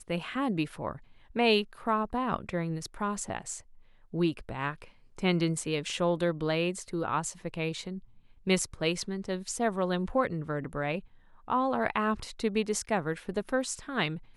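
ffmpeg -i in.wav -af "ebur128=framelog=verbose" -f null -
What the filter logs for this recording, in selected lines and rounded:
Integrated loudness:
  I:         -31.1 LUFS
  Threshold: -41.5 LUFS
Loudness range:
  LRA:         2.2 LU
  Threshold: -51.6 LUFS
  LRA low:   -33.1 LUFS
  LRA high:  -30.9 LUFS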